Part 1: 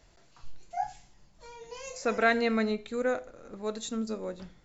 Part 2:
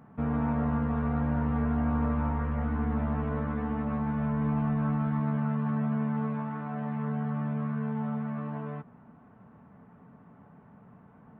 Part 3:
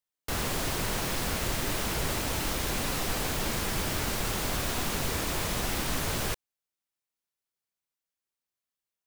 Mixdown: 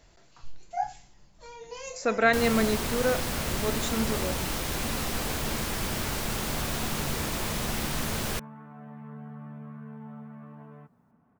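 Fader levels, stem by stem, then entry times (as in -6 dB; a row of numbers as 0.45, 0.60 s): +2.5, -11.0, -0.5 dB; 0.00, 2.05, 2.05 s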